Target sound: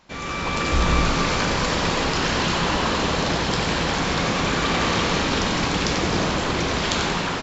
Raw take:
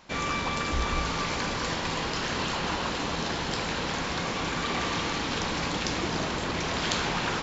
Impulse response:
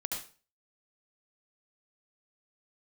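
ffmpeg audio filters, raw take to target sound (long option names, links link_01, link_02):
-filter_complex "[0:a]dynaudnorm=framelen=190:gausssize=5:maxgain=8.5dB,asplit=7[link_01][link_02][link_03][link_04][link_05][link_06][link_07];[link_02]adelay=91,afreqshift=110,volume=-7.5dB[link_08];[link_03]adelay=182,afreqshift=220,volume=-13dB[link_09];[link_04]adelay=273,afreqshift=330,volume=-18.5dB[link_10];[link_05]adelay=364,afreqshift=440,volume=-24dB[link_11];[link_06]adelay=455,afreqshift=550,volume=-29.6dB[link_12];[link_07]adelay=546,afreqshift=660,volume=-35.1dB[link_13];[link_01][link_08][link_09][link_10][link_11][link_12][link_13]amix=inputs=7:normalize=0,asplit=2[link_14][link_15];[1:a]atrim=start_sample=2205,asetrate=32634,aresample=44100,lowshelf=frequency=330:gain=8.5[link_16];[link_15][link_16]afir=irnorm=-1:irlink=0,volume=-11.5dB[link_17];[link_14][link_17]amix=inputs=2:normalize=0,volume=-4.5dB"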